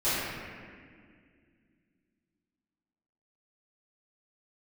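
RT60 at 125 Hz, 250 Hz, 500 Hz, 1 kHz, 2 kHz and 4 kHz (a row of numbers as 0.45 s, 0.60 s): 3.0 s, 3.2 s, 2.3 s, 1.8 s, 2.1 s, 1.4 s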